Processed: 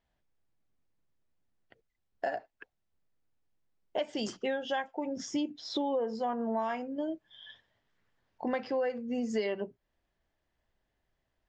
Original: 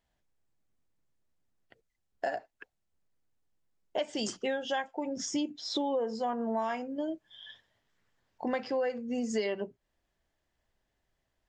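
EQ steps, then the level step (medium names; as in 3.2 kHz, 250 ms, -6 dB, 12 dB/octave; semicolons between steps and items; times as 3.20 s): distance through air 94 m; 0.0 dB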